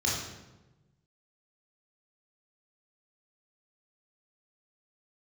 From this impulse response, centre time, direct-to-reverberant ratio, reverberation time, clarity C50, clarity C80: 64 ms, −5.5 dB, 1.1 s, 1.0 dB, 4.0 dB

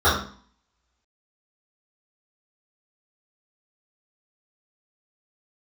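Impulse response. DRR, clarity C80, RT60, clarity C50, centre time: −13.0 dB, 8.5 dB, 0.45 s, 4.5 dB, 41 ms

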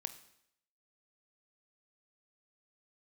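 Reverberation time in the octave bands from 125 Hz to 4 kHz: 0.65, 0.70, 0.75, 0.70, 0.70, 0.70 seconds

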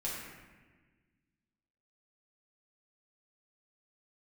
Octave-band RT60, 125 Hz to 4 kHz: 2.1, 2.1, 1.5, 1.3, 1.5, 0.95 seconds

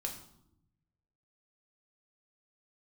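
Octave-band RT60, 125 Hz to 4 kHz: 1.6, 1.2, 0.90, 0.75, 0.55, 0.55 seconds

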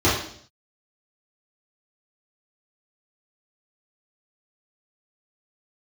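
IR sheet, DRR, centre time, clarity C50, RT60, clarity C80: −11.0 dB, 53 ms, 3.5 dB, 0.60 s, 7.5 dB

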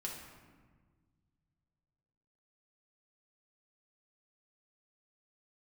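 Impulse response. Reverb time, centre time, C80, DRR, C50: 1.5 s, 56 ms, 5.5 dB, −2.5 dB, 3.0 dB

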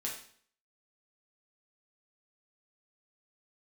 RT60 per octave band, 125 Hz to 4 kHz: 0.60, 0.60, 0.55, 0.55, 0.55, 0.50 seconds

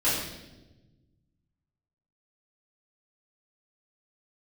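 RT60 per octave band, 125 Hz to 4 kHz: 2.3, 1.8, 1.3, 0.85, 0.90, 0.95 seconds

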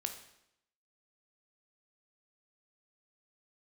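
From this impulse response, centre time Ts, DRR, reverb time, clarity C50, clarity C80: 16 ms, 5.5 dB, 0.80 s, 8.5 dB, 11.5 dB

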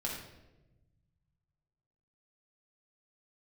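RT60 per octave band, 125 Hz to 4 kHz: 2.7, 1.7, 1.2, 0.85, 0.80, 0.70 seconds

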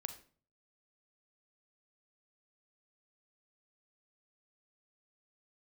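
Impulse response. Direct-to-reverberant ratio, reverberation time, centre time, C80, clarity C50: 8.0 dB, 0.45 s, 9 ms, 15.5 dB, 10.5 dB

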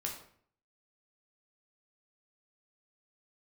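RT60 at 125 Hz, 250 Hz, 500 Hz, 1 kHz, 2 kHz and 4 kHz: 0.70, 0.65, 0.60, 0.55, 0.50, 0.45 seconds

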